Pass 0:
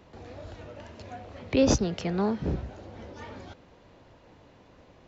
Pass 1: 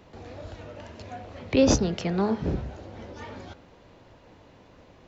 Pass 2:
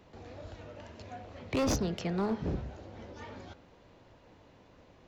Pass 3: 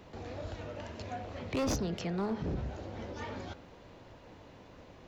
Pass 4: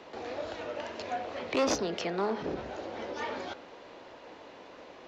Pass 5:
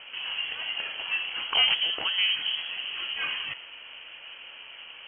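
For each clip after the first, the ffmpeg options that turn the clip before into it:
-af "bandreject=f=69.87:t=h:w=4,bandreject=f=139.74:t=h:w=4,bandreject=f=209.61:t=h:w=4,bandreject=f=279.48:t=h:w=4,bandreject=f=349.35:t=h:w=4,bandreject=f=419.22:t=h:w=4,bandreject=f=489.09:t=h:w=4,bandreject=f=558.96:t=h:w=4,bandreject=f=628.83:t=h:w=4,bandreject=f=698.7:t=h:w=4,bandreject=f=768.57:t=h:w=4,bandreject=f=838.44:t=h:w=4,bandreject=f=908.31:t=h:w=4,bandreject=f=978.18:t=h:w=4,bandreject=f=1.04805k:t=h:w=4,bandreject=f=1.11792k:t=h:w=4,bandreject=f=1.18779k:t=h:w=4,bandreject=f=1.25766k:t=h:w=4,bandreject=f=1.32753k:t=h:w=4,bandreject=f=1.3974k:t=h:w=4,bandreject=f=1.46727k:t=h:w=4,bandreject=f=1.53714k:t=h:w=4,bandreject=f=1.60701k:t=h:w=4,bandreject=f=1.67688k:t=h:w=4,bandreject=f=1.74675k:t=h:w=4,bandreject=f=1.81662k:t=h:w=4,bandreject=f=1.88649k:t=h:w=4,bandreject=f=1.95636k:t=h:w=4,volume=2.5dB"
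-af "asoftclip=type=hard:threshold=-20dB,volume=-5.5dB"
-filter_complex "[0:a]asplit=2[a][b];[b]acompressor=threshold=-39dB:ratio=6,volume=-2dB[c];[a][c]amix=inputs=2:normalize=0,alimiter=level_in=4dB:limit=-24dB:level=0:latency=1:release=35,volume=-4dB"
-filter_complex "[0:a]acrossover=split=280 7100:gain=0.0891 1 0.126[a][b][c];[a][b][c]amix=inputs=3:normalize=0,volume=7dB"
-af "lowpass=f=2.9k:t=q:w=0.5098,lowpass=f=2.9k:t=q:w=0.6013,lowpass=f=2.9k:t=q:w=0.9,lowpass=f=2.9k:t=q:w=2.563,afreqshift=-3400,volume=5dB"

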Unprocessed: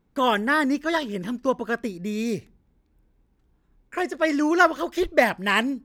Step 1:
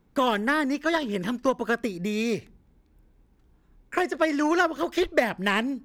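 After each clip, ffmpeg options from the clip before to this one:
-filter_complex "[0:a]acrossover=split=480|4700[a][b][c];[a]acompressor=threshold=-33dB:ratio=4[d];[b]acompressor=threshold=-30dB:ratio=4[e];[c]acompressor=threshold=-53dB:ratio=4[f];[d][e][f]amix=inputs=3:normalize=0,aeval=exprs='0.2*(cos(1*acos(clip(val(0)/0.2,-1,1)))-cos(1*PI/2))+0.00708*(cos(7*acos(clip(val(0)/0.2,-1,1)))-cos(7*PI/2))':c=same,volume=6.5dB"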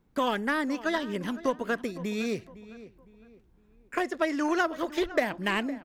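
-filter_complex "[0:a]asplit=2[a][b];[b]adelay=509,lowpass=f=2.5k:p=1,volume=-16dB,asplit=2[c][d];[d]adelay=509,lowpass=f=2.5k:p=1,volume=0.37,asplit=2[e][f];[f]adelay=509,lowpass=f=2.5k:p=1,volume=0.37[g];[a][c][e][g]amix=inputs=4:normalize=0,volume=-4dB"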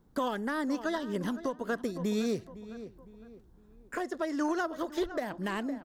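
-af "equalizer=f=2.4k:t=o:w=0.65:g=-11,alimiter=level_in=1dB:limit=-24dB:level=0:latency=1:release=472,volume=-1dB,volume=3.5dB"

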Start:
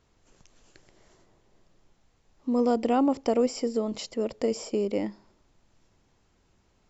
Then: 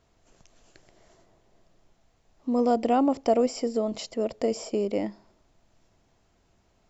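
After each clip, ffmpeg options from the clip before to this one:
-af "equalizer=f=670:t=o:w=0.23:g=8"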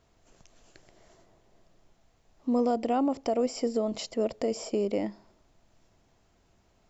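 -af "alimiter=limit=-18dB:level=0:latency=1:release=228"

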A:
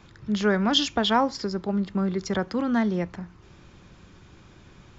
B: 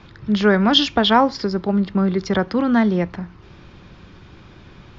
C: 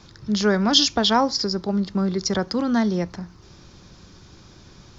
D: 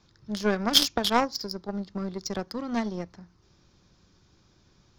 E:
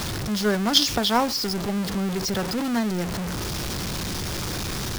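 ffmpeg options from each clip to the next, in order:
-af "lowpass=f=5.1k:w=0.5412,lowpass=f=5.1k:w=1.3066,volume=7dB"
-af "highshelf=f=4k:t=q:w=1.5:g=13,volume=-4dB"
-af "aeval=exprs='0.891*(cos(1*acos(clip(val(0)/0.891,-1,1)))-cos(1*PI/2))+0.1*(cos(7*acos(clip(val(0)/0.891,-1,1)))-cos(7*PI/2))':c=same,volume=-1dB"
-af "aeval=exprs='val(0)+0.5*0.0708*sgn(val(0))':c=same"

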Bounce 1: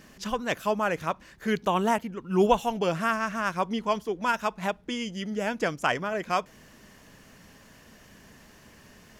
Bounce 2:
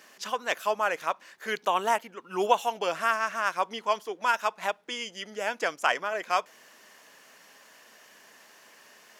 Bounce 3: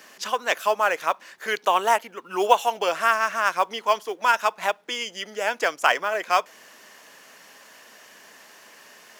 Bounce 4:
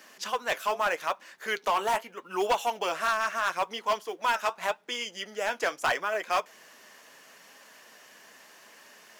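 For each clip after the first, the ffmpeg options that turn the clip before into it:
-af "highpass=570,volume=1.5dB"
-filter_complex "[0:a]acrossover=split=280|5400[a][b][c];[a]acompressor=threshold=-57dB:ratio=6[d];[d][b][c]amix=inputs=3:normalize=0,acrusher=bits=7:mode=log:mix=0:aa=0.000001,volume=5.5dB"
-af "flanger=delay=3.1:depth=6.2:regen=-63:speed=0.79:shape=triangular,asoftclip=type=hard:threshold=-20dB"

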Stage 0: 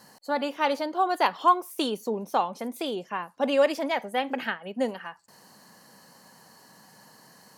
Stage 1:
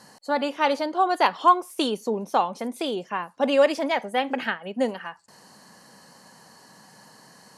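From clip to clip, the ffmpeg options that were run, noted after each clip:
-af "lowpass=f=11k:w=0.5412,lowpass=f=11k:w=1.3066,volume=3dB"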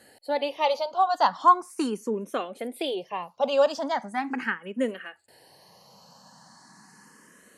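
-filter_complex "[0:a]asplit=2[a][b];[b]afreqshift=0.39[c];[a][c]amix=inputs=2:normalize=1"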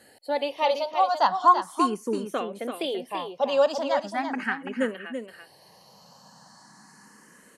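-af "aecho=1:1:335:0.422"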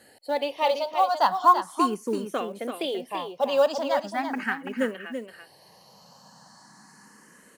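-af "acrusher=bits=8:mode=log:mix=0:aa=0.000001"

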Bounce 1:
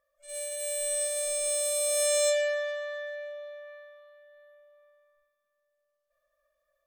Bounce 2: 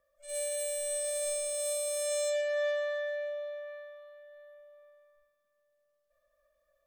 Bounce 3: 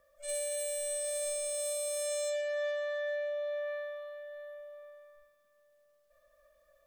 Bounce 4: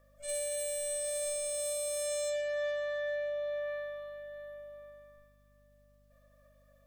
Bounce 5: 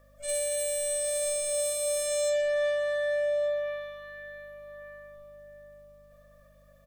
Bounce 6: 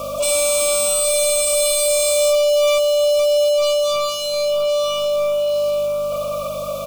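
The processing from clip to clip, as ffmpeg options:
-filter_complex "[0:a]acrossover=split=550|1600[a][b][c];[a]acontrast=61[d];[d][b][c]amix=inputs=3:normalize=0,alimiter=level_in=2dB:limit=-24dB:level=0:latency=1,volume=-2dB"
-af "acompressor=threshold=-41dB:ratio=5,volume=7.5dB"
-af "aeval=exprs='val(0)+0.000562*(sin(2*PI*50*n/s)+sin(2*PI*2*50*n/s)/2+sin(2*PI*3*50*n/s)/3+sin(2*PI*4*50*n/s)/4+sin(2*PI*5*50*n/s)/5)':c=same"
-filter_complex "[0:a]asplit=2[a][b];[b]adelay=1166,volume=-8dB,highshelf=f=4k:g=-26.2[c];[a][c]amix=inputs=2:normalize=0,volume=5.5dB"
-filter_complex "[0:a]asplit=2[a][b];[b]highpass=f=720:p=1,volume=38dB,asoftclip=type=tanh:threshold=-20dB[c];[a][c]amix=inputs=2:normalize=0,lowpass=f=6.9k:p=1,volume=-6dB,acrusher=bits=5:mode=log:mix=0:aa=0.000001,asuperstop=centerf=1800:order=20:qfactor=2,volume=9dB"

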